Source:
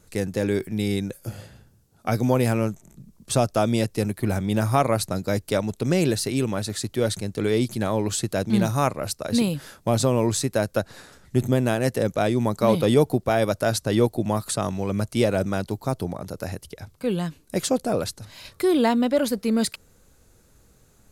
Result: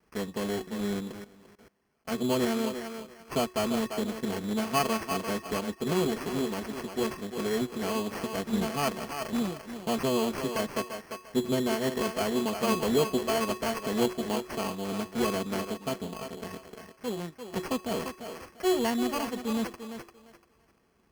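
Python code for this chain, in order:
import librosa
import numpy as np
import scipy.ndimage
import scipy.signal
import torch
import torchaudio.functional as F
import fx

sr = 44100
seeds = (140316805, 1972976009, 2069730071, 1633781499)

y = fx.lower_of_two(x, sr, delay_ms=4.5)
y = scipy.signal.sosfilt(scipy.signal.butter(2, 60.0, 'highpass', fs=sr, output='sos'), y)
y = fx.comb_fb(y, sr, f0_hz=370.0, decay_s=0.35, harmonics='odd', damping=0.0, mix_pct=80)
y = fx.echo_thinned(y, sr, ms=345, feedback_pct=27, hz=390.0, wet_db=-6)
y = fx.level_steps(y, sr, step_db=20, at=(1.24, 2.11))
y = fx.high_shelf(y, sr, hz=8400.0, db=-7.0)
y = fx.sample_hold(y, sr, seeds[0], rate_hz=3700.0, jitter_pct=0)
y = y * 10.0 ** (5.5 / 20.0)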